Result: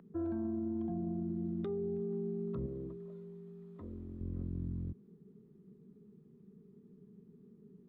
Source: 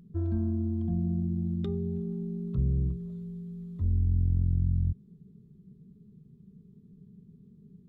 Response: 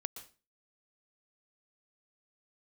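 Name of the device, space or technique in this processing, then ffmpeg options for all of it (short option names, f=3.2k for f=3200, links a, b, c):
DJ mixer with the lows and highs turned down: -filter_complex "[0:a]acrossover=split=270 2200:gain=0.0794 1 0.141[a][b][c];[a][b][c]amix=inputs=3:normalize=0,alimiter=level_in=13dB:limit=-24dB:level=0:latency=1:release=20,volume=-13dB,asettb=1/sr,asplit=3[d][e][f];[d]atrim=end=2.664[g];[e]atrim=start=2.66:end=4.21,asetpts=PTS-STARTPTS,afade=t=in:d=0.004:c=qsin,afade=t=out:st=1.546:d=0.004:c=qsin,lowshelf=f=180:g=-11[h];[f]atrim=start=4.206[i];[g][h]acrossfade=d=0.004:c1=hsin:c2=qsin[j];[j][i]acrossfade=d=0.004:c1=qsin:c2=hsin,volume=6.5dB"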